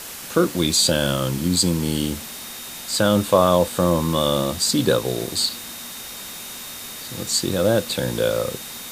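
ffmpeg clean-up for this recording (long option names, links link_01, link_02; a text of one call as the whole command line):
ffmpeg -i in.wav -af "adeclick=threshold=4,bandreject=frequency=3700:width=30,afftdn=noise_reduction=30:noise_floor=-35" out.wav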